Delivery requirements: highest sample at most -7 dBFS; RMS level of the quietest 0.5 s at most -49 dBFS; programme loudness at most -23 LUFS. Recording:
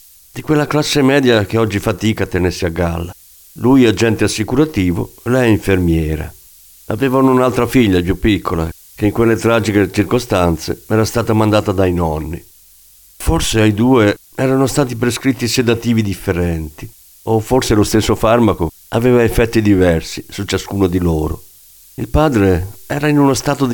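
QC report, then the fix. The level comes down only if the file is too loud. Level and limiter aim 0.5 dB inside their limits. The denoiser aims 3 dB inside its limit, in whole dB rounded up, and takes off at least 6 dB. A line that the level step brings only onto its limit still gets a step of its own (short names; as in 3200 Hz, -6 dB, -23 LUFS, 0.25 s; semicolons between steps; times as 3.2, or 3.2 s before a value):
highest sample -1.5 dBFS: fail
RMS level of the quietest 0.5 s -45 dBFS: fail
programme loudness -14.5 LUFS: fail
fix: gain -9 dB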